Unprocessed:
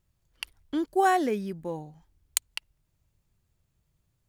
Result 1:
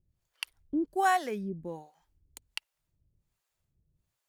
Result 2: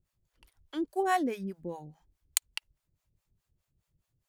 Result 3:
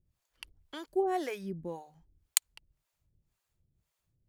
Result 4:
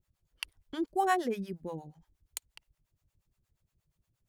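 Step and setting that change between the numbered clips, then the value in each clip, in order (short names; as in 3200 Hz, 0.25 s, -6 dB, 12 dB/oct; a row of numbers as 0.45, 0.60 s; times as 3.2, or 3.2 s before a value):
harmonic tremolo, rate: 1.3, 4.8, 1.9, 8.5 Hz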